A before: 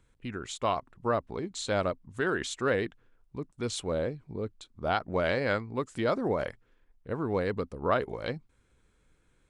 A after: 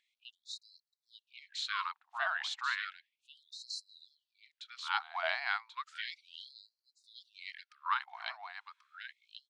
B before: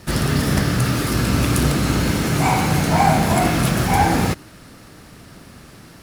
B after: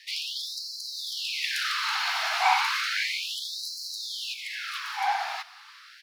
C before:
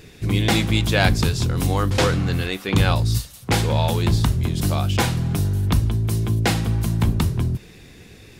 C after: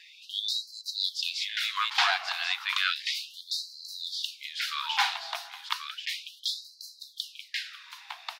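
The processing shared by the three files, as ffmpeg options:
-af "highshelf=f=6.2k:t=q:w=1.5:g=-12.5,aecho=1:1:1086:0.473,afftfilt=real='re*gte(b*sr/1024,640*pow(4000/640,0.5+0.5*sin(2*PI*0.33*pts/sr)))':imag='im*gte(b*sr/1024,640*pow(4000/640,0.5+0.5*sin(2*PI*0.33*pts/sr)))':win_size=1024:overlap=0.75,volume=-2dB"

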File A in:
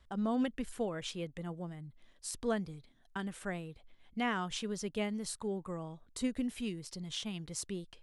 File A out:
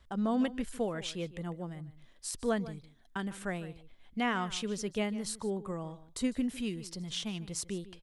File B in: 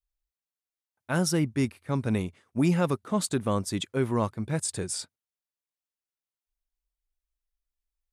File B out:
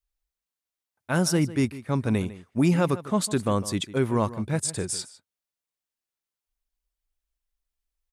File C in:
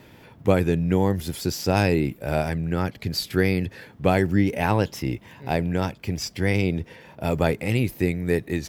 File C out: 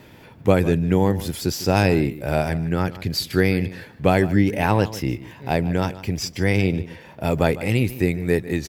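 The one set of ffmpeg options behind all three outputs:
-filter_complex "[0:a]asplit=2[a][b];[b]adelay=151.6,volume=-16dB,highshelf=f=4k:g=-3.41[c];[a][c]amix=inputs=2:normalize=0,volume=2.5dB"

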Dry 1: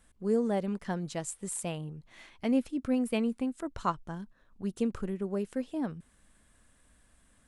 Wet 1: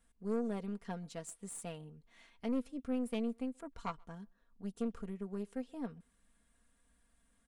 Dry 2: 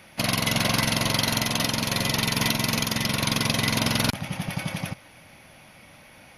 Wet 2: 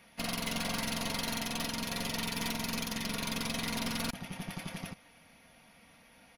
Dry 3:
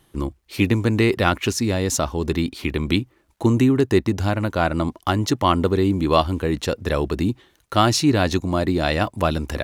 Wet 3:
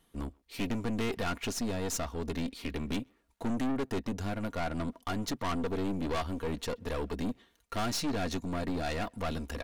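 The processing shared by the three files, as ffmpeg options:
-filter_complex "[0:a]aecho=1:1:4.3:0.57,aeval=exprs='(tanh(11.2*val(0)+0.55)-tanh(0.55))/11.2':c=same,asplit=2[a][b];[b]adelay=130,highpass=300,lowpass=3.4k,asoftclip=type=hard:threshold=-26dB,volume=-28dB[c];[a][c]amix=inputs=2:normalize=0,volume=-8dB"

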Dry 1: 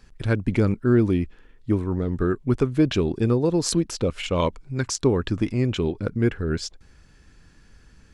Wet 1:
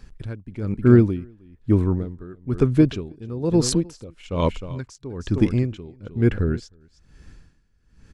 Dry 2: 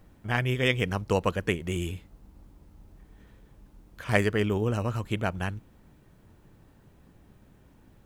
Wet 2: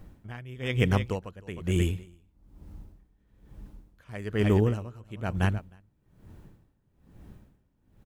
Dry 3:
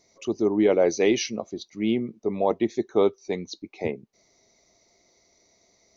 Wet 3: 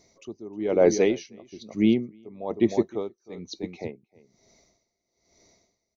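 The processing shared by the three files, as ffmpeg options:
-filter_complex "[0:a]lowshelf=f=300:g=6.5,asplit=2[a][b];[b]aecho=0:1:310:0.2[c];[a][c]amix=inputs=2:normalize=0,aeval=exprs='val(0)*pow(10,-22*(0.5-0.5*cos(2*PI*1.1*n/s))/20)':c=same,volume=2dB"

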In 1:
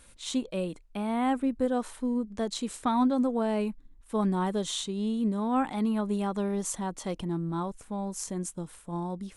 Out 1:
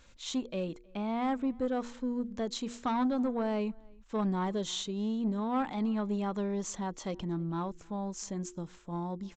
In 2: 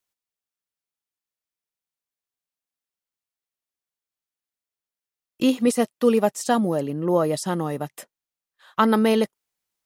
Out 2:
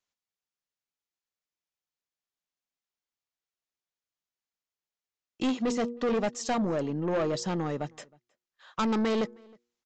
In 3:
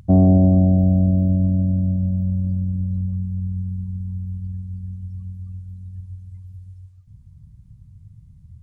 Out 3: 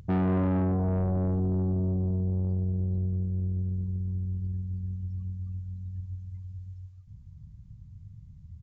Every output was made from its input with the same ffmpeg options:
-filter_complex "[0:a]bandreject=f=119.4:t=h:w=4,bandreject=f=238.8:t=h:w=4,bandreject=f=358.2:t=h:w=4,bandreject=f=477.6:t=h:w=4,aresample=16000,asoftclip=type=tanh:threshold=-21.5dB,aresample=44100,asplit=2[a][b];[b]adelay=314.9,volume=-27dB,highshelf=f=4k:g=-7.08[c];[a][c]amix=inputs=2:normalize=0,volume=-2dB"

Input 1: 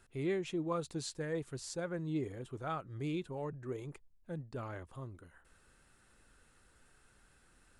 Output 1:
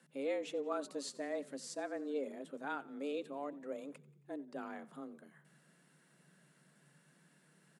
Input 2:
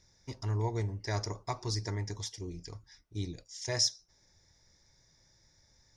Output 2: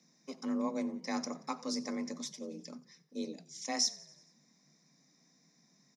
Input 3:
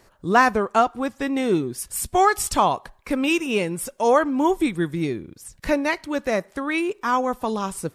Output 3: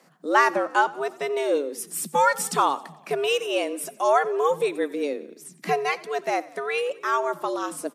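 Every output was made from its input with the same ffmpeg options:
-filter_complex "[0:a]asplit=6[a][b][c][d][e][f];[b]adelay=90,afreqshift=-32,volume=-20.5dB[g];[c]adelay=180,afreqshift=-64,volume=-25.1dB[h];[d]adelay=270,afreqshift=-96,volume=-29.7dB[i];[e]adelay=360,afreqshift=-128,volume=-34.2dB[j];[f]adelay=450,afreqshift=-160,volume=-38.8dB[k];[a][g][h][i][j][k]amix=inputs=6:normalize=0,afreqshift=140,volume=-2.5dB"

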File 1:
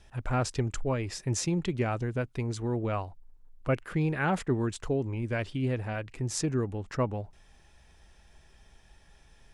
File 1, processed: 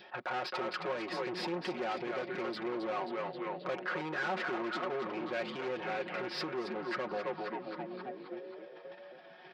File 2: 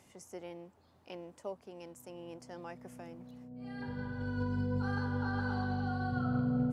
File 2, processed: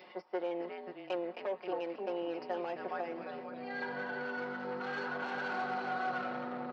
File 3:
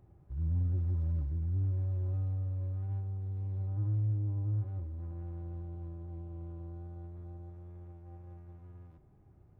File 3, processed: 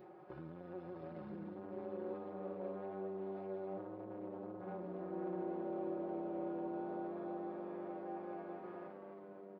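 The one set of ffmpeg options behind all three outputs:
-filter_complex "[0:a]aresample=11025,volume=20.5dB,asoftclip=hard,volume=-20.5dB,aresample=44100,agate=range=-12dB:threshold=-52dB:ratio=16:detection=peak,adynamicequalizer=threshold=0.00355:dfrequency=970:dqfactor=0.93:tfrequency=970:tqfactor=0.93:attack=5:release=100:ratio=0.375:range=2:mode=cutabove:tftype=bell,asplit=2[a][b];[b]asplit=8[c][d][e][f][g][h][i][j];[c]adelay=266,afreqshift=-96,volume=-7dB[k];[d]adelay=532,afreqshift=-192,volume=-11.6dB[l];[e]adelay=798,afreqshift=-288,volume=-16.2dB[m];[f]adelay=1064,afreqshift=-384,volume=-20.7dB[n];[g]adelay=1330,afreqshift=-480,volume=-25.3dB[o];[h]adelay=1596,afreqshift=-576,volume=-29.9dB[p];[i]adelay=1862,afreqshift=-672,volume=-34.5dB[q];[j]adelay=2128,afreqshift=-768,volume=-39.1dB[r];[k][l][m][n][o][p][q][r]amix=inputs=8:normalize=0[s];[a][s]amix=inputs=2:normalize=0,asplit=2[t][u];[u]highpass=f=720:p=1,volume=24dB,asoftclip=type=tanh:threshold=-15dB[v];[t][v]amix=inputs=2:normalize=0,lowpass=f=1.1k:p=1,volume=-6dB,asoftclip=type=tanh:threshold=-26dB,acompressor=threshold=-34dB:ratio=6,highpass=350,acompressor=mode=upward:threshold=-47dB:ratio=2.5,aecho=1:1:5.5:0.73"

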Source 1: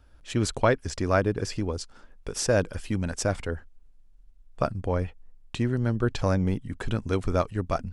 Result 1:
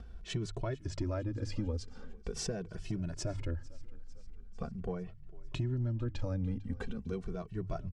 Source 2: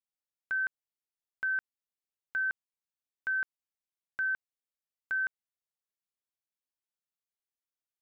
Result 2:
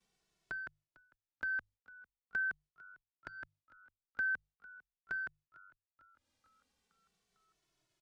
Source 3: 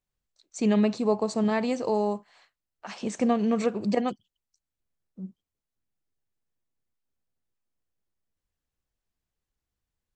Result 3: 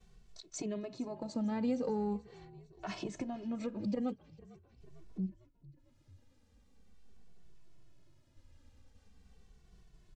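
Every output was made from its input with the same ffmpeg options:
-filter_complex "[0:a]lowpass=6.3k,alimiter=limit=-17.5dB:level=0:latency=1:release=291,lowshelf=f=430:g=8,acompressor=mode=upward:threshold=-39dB:ratio=2.5,equalizer=f=1.4k:t=o:w=2.5:g=-2.5,bandreject=f=50:t=h:w=6,bandreject=f=100:t=h:w=6,bandreject=f=150:t=h:w=6,acompressor=threshold=-34dB:ratio=3,agate=range=-33dB:threshold=-56dB:ratio=3:detection=peak,asplit=6[a][b][c][d][e][f];[b]adelay=450,afreqshift=-48,volume=-21.5dB[g];[c]adelay=900,afreqshift=-96,volume=-25.4dB[h];[d]adelay=1350,afreqshift=-144,volume=-29.3dB[i];[e]adelay=1800,afreqshift=-192,volume=-33.1dB[j];[f]adelay=2250,afreqshift=-240,volume=-37dB[k];[a][g][h][i][j][k]amix=inputs=6:normalize=0,asoftclip=type=tanh:threshold=-21dB,asplit=2[l][m];[m]adelay=2.2,afreqshift=-0.42[n];[l][n]amix=inputs=2:normalize=1,volume=2dB"

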